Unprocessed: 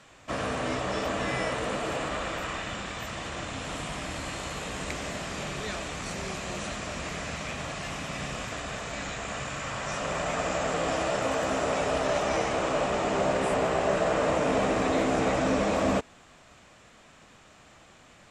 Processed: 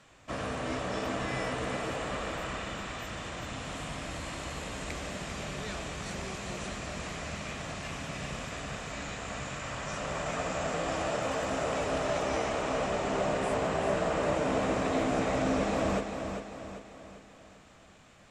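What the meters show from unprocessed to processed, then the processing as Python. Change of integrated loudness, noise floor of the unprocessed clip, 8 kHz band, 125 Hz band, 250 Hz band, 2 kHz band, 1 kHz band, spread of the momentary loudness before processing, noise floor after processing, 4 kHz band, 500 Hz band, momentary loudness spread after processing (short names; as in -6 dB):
-3.5 dB, -55 dBFS, -4.0 dB, -1.5 dB, -2.5 dB, -4.0 dB, -4.0 dB, 9 LU, -56 dBFS, -4.0 dB, -3.5 dB, 9 LU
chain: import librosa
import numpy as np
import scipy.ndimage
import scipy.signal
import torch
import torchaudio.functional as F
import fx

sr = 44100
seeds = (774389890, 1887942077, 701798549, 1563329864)

p1 = fx.low_shelf(x, sr, hz=200.0, db=3.5)
p2 = p1 + fx.echo_feedback(p1, sr, ms=395, feedback_pct=47, wet_db=-7, dry=0)
y = F.gain(torch.from_numpy(p2), -5.0).numpy()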